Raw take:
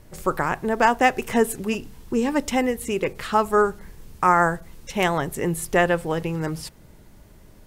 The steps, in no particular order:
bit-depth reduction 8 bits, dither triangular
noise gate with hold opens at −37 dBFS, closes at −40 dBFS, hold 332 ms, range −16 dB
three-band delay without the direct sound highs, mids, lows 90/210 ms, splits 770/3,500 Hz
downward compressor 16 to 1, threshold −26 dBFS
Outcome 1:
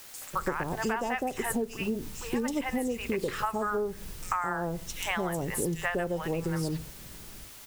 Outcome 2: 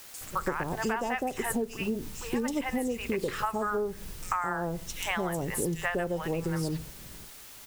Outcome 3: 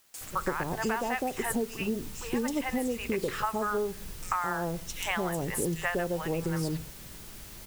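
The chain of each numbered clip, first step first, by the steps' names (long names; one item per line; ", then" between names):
noise gate with hold, then three-band delay without the direct sound, then bit-depth reduction, then downward compressor
three-band delay without the direct sound, then noise gate with hold, then bit-depth reduction, then downward compressor
three-band delay without the direct sound, then downward compressor, then bit-depth reduction, then noise gate with hold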